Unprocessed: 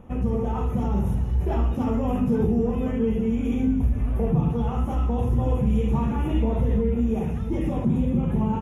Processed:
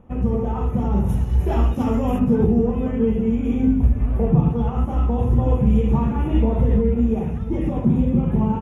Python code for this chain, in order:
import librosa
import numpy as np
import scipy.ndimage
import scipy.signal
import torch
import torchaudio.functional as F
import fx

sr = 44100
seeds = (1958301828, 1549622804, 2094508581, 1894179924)

y = fx.high_shelf(x, sr, hz=3000.0, db=fx.steps((0.0, -7.0), (1.08, 4.5), (2.18, -8.0)))
y = fx.upward_expand(y, sr, threshold_db=-36.0, expansion=1.5)
y = y * librosa.db_to_amplitude(6.5)